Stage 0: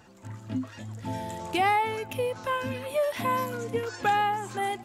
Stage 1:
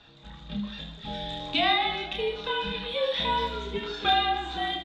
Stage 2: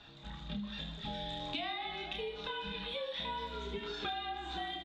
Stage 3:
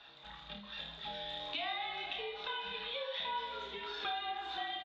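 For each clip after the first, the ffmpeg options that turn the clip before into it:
ffmpeg -i in.wav -filter_complex "[0:a]lowpass=frequency=3700:width_type=q:width=16,afreqshift=-53,asplit=2[link_01][link_02];[link_02]aecho=0:1:30|78|154.8|277.7|474.3:0.631|0.398|0.251|0.158|0.1[link_03];[link_01][link_03]amix=inputs=2:normalize=0,volume=-4dB" out.wav
ffmpeg -i in.wav -af "acompressor=threshold=-36dB:ratio=6,bandreject=frequency=490:width=13,volume=-1dB" out.wav
ffmpeg -i in.wav -filter_complex "[0:a]acrossover=split=480 5600:gain=0.158 1 0.0794[link_01][link_02][link_03];[link_01][link_02][link_03]amix=inputs=3:normalize=0,asplit=2[link_04][link_05];[link_05]aecho=0:1:55|550:0.335|0.224[link_06];[link_04][link_06]amix=inputs=2:normalize=0,volume=1dB" out.wav

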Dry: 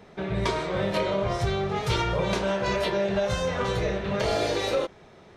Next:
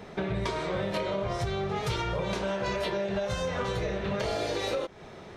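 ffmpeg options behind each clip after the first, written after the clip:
ffmpeg -i in.wav -af "acompressor=threshold=-34dB:ratio=5,volume=5.5dB" out.wav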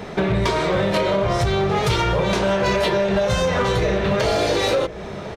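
ffmpeg -i in.wav -filter_complex "[0:a]asplit=2[link_01][link_02];[link_02]aeval=exprs='0.0398*(abs(mod(val(0)/0.0398+3,4)-2)-1)':channel_layout=same,volume=-8dB[link_03];[link_01][link_03]amix=inputs=2:normalize=0,asplit=2[link_04][link_05];[link_05]adelay=1050,volume=-15dB,highshelf=frequency=4000:gain=-23.6[link_06];[link_04][link_06]amix=inputs=2:normalize=0,volume=9dB" out.wav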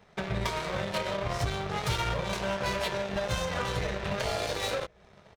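ffmpeg -i in.wav -af "equalizer=frequency=310:width_type=o:width=1.2:gain=-8.5,aeval=exprs='0.335*(cos(1*acos(clip(val(0)/0.335,-1,1)))-cos(1*PI/2))+0.0422*(cos(7*acos(clip(val(0)/0.335,-1,1)))-cos(7*PI/2))':channel_layout=same,volume=-8dB" out.wav

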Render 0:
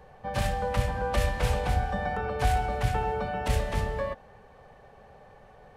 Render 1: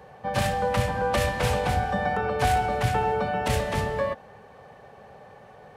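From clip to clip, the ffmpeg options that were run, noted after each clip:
ffmpeg -i in.wav -af "highpass=99,volume=5dB" out.wav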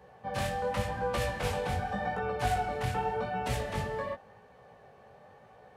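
ffmpeg -i in.wav -af "flanger=delay=16:depth=6.7:speed=0.88,volume=-4.5dB" out.wav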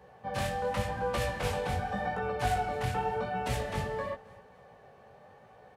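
ffmpeg -i in.wav -af "aecho=1:1:266|532|798:0.0794|0.035|0.0154" out.wav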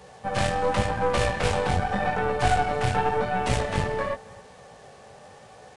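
ffmpeg -i in.wav -af "acrusher=bits=9:mix=0:aa=0.000001,aeval=exprs='0.15*(cos(1*acos(clip(val(0)/0.15,-1,1)))-cos(1*PI/2))+0.0168*(cos(6*acos(clip(val(0)/0.15,-1,1)))-cos(6*PI/2))':channel_layout=same,aresample=22050,aresample=44100,volume=7dB" out.wav

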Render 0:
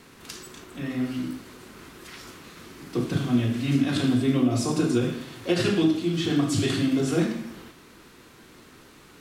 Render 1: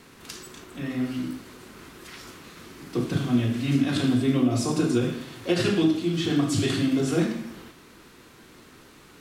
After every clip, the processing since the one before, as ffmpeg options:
ffmpeg -i in.wav -af anull out.wav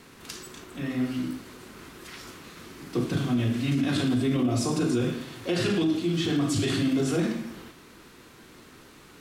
ffmpeg -i in.wav -af "alimiter=limit=-17.5dB:level=0:latency=1:release=11" out.wav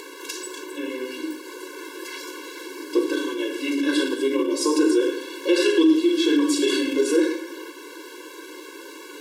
ffmpeg -i in.wav -filter_complex "[0:a]asplit=2[link_01][link_02];[link_02]acompressor=mode=upward:threshold=-31dB:ratio=2.5,volume=-3dB[link_03];[link_01][link_03]amix=inputs=2:normalize=0,afftfilt=real='re*eq(mod(floor(b*sr/1024/290),2),1)':imag='im*eq(mod(floor(b*sr/1024/290),2),1)':win_size=1024:overlap=0.75,volume=4.5dB" out.wav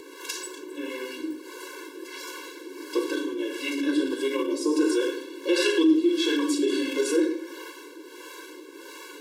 ffmpeg -i in.wav -filter_complex "[0:a]acrossover=split=440[link_01][link_02];[link_01]aeval=exprs='val(0)*(1-0.7/2+0.7/2*cos(2*PI*1.5*n/s))':channel_layout=same[link_03];[link_02]aeval=exprs='val(0)*(1-0.7/2-0.7/2*cos(2*PI*1.5*n/s))':channel_layout=same[link_04];[link_03][link_04]amix=inputs=2:normalize=0" out.wav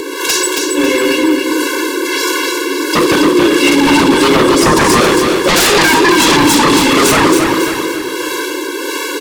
ffmpeg -i in.wav -filter_complex "[0:a]aeval=exprs='0.316*sin(PI/2*6.31*val(0)/0.316)':channel_layout=same,asplit=2[link_01][link_02];[link_02]aecho=0:1:274|548|822|1096|1370:0.562|0.242|0.104|0.0447|0.0192[link_03];[link_01][link_03]amix=inputs=2:normalize=0,volume=3dB" out.wav

